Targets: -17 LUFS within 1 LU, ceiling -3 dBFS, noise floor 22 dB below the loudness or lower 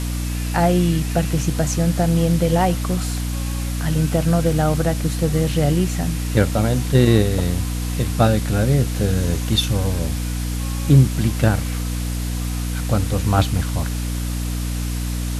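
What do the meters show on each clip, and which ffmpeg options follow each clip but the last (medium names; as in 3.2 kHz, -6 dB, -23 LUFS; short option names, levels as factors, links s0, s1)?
hum 60 Hz; highest harmonic 300 Hz; hum level -21 dBFS; noise floor -24 dBFS; noise floor target -42 dBFS; loudness -20.0 LUFS; peak level -1.0 dBFS; loudness target -17.0 LUFS
-> -af "bandreject=f=60:t=h:w=4,bandreject=f=120:t=h:w=4,bandreject=f=180:t=h:w=4,bandreject=f=240:t=h:w=4,bandreject=f=300:t=h:w=4"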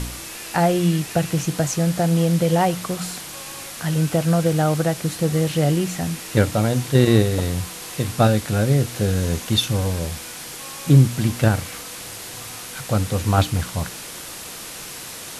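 hum not found; noise floor -35 dBFS; noise floor target -43 dBFS
-> -af "afftdn=nr=8:nf=-35"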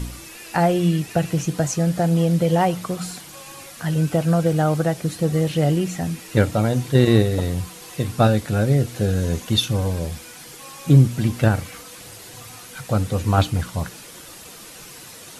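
noise floor -41 dBFS; noise floor target -43 dBFS
-> -af "afftdn=nr=6:nf=-41"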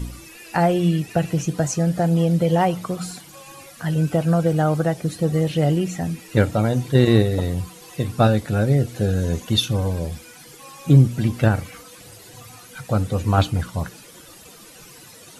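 noise floor -45 dBFS; loudness -20.5 LUFS; peak level -2.5 dBFS; loudness target -17.0 LUFS
-> -af "volume=1.5,alimiter=limit=0.708:level=0:latency=1"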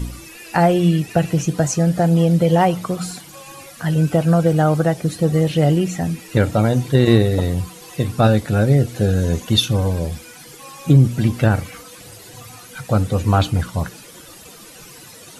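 loudness -17.5 LUFS; peak level -3.0 dBFS; noise floor -41 dBFS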